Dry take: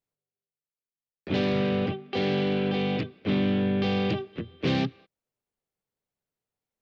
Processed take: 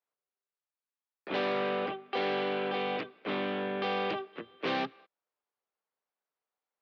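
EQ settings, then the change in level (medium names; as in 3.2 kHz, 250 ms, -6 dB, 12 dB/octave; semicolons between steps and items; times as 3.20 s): band-pass 350–5000 Hz; peaking EQ 1.1 kHz +9.5 dB 1.6 oct; -5.0 dB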